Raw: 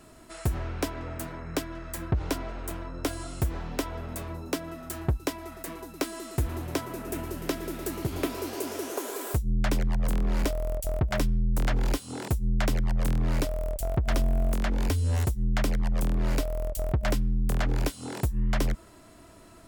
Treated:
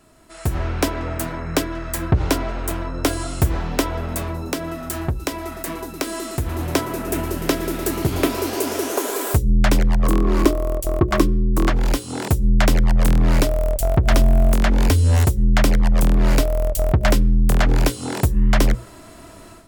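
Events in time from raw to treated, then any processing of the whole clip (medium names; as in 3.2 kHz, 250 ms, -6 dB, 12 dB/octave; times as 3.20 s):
4.29–6.59 s: compression 2:1, threshold -33 dBFS
10.03–11.70 s: small resonant body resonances 340/1100 Hz, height 16 dB
whole clip: hum notches 60/120/180/240/300/360/420/480/540 Hz; level rider gain up to 12.5 dB; trim -1.5 dB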